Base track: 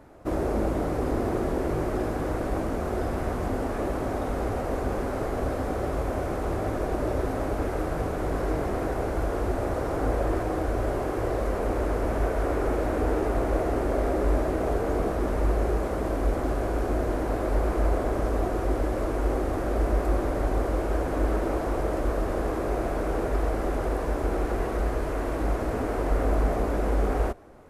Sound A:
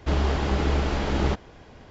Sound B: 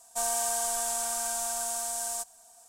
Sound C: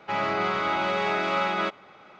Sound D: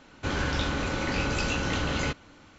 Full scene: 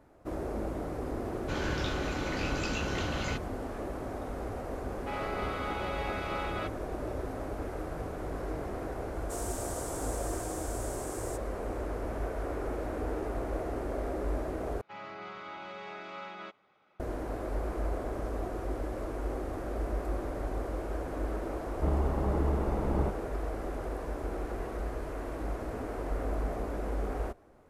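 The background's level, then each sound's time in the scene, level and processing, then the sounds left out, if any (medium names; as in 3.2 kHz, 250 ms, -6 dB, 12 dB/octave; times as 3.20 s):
base track -9 dB
1.25 s: add D -6 dB
4.98 s: add C -11 dB
9.14 s: add B -12.5 dB
14.81 s: replace with C -17.5 dB
21.75 s: add A -6 dB + Savitzky-Golay filter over 65 samples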